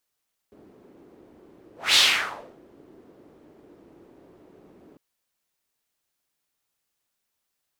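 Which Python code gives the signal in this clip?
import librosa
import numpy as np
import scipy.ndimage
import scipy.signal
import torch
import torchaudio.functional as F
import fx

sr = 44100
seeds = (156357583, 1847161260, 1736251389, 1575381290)

y = fx.whoosh(sr, seeds[0], length_s=4.45, peak_s=1.43, rise_s=0.21, fall_s=0.69, ends_hz=350.0, peak_hz=3700.0, q=2.4, swell_db=36)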